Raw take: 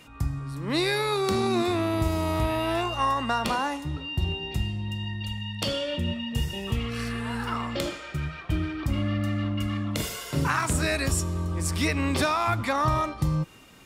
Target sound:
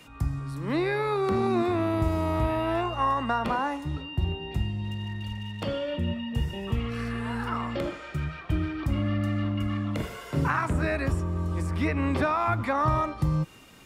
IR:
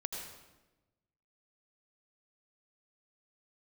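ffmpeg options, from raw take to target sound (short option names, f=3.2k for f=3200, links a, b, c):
-filter_complex "[0:a]acrossover=split=170|2300[a][b][c];[c]acompressor=threshold=-49dB:ratio=12[d];[a][b][d]amix=inputs=3:normalize=0,asettb=1/sr,asplit=3[e][f][g];[e]atrim=end=4.844[h];[f]atrim=start=4.84:end=5.63,asetpts=PTS-STARTPTS,afade=t=in:d=0.004:c=qsin,afade=t=out:st=0.786:d=0.004:c=qsin,aeval=exprs='sgn(val(0))*max(abs(val(0))-0.00316,0)':c=same[i];[g]atrim=start=5.626[j];[h][i]acrossfade=d=0.004:c1=hsin:c2=qsin[k];[k][j]acrossfade=d=0.004:c1=qsin:c2=hsin"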